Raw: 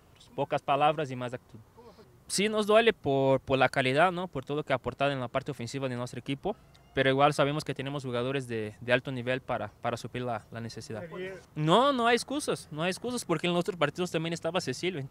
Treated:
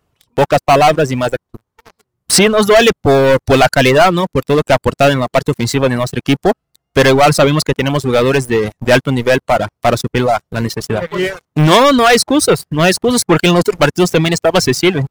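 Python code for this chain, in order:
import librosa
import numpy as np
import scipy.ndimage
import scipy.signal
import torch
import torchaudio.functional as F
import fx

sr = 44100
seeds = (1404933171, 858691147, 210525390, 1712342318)

y = fx.leveller(x, sr, passes=5)
y = fx.dereverb_blind(y, sr, rt60_s=0.93)
y = F.gain(torch.from_numpy(y), 4.5).numpy()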